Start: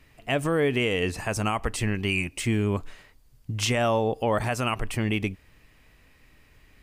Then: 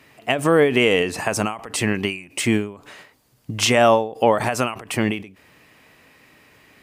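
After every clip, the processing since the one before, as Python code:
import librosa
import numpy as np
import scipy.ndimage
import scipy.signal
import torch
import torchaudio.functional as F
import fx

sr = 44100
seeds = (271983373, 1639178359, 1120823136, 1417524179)

y = scipy.signal.sosfilt(scipy.signal.butter(2, 160.0, 'highpass', fs=sr, output='sos'), x)
y = fx.peak_eq(y, sr, hz=760.0, db=3.0, octaves=1.9)
y = fx.end_taper(y, sr, db_per_s=120.0)
y = F.gain(torch.from_numpy(y), 7.5).numpy()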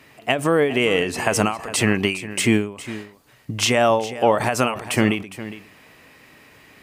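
y = fx.rider(x, sr, range_db=3, speed_s=0.5)
y = y + 10.0 ** (-14.5 / 20.0) * np.pad(y, (int(409 * sr / 1000.0), 0))[:len(y)]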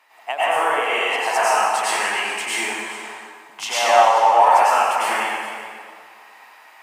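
y = fx.highpass_res(x, sr, hz=860.0, q=3.6)
y = fx.rev_plate(y, sr, seeds[0], rt60_s=1.9, hf_ratio=0.7, predelay_ms=85, drr_db=-10.0)
y = F.gain(torch.from_numpy(y), -9.5).numpy()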